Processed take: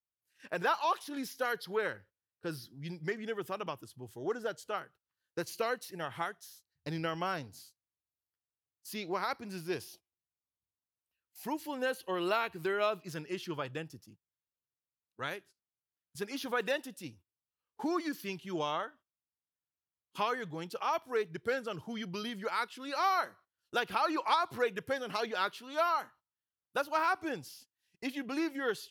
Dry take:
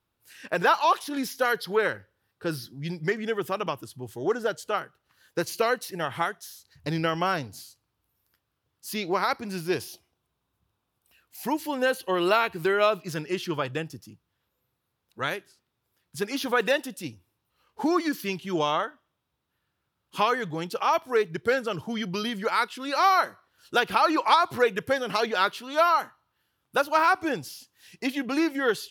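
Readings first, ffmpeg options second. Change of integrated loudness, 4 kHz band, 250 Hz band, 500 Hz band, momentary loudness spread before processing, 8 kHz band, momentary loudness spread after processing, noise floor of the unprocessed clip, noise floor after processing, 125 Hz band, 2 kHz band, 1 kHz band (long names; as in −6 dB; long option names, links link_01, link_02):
−9.0 dB, −9.0 dB, −9.0 dB, −9.0 dB, 14 LU, −9.0 dB, 13 LU, −80 dBFS, below −85 dBFS, −9.0 dB, −9.0 dB, −9.0 dB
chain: -af "agate=range=-18dB:threshold=-47dB:ratio=16:detection=peak,volume=-9dB"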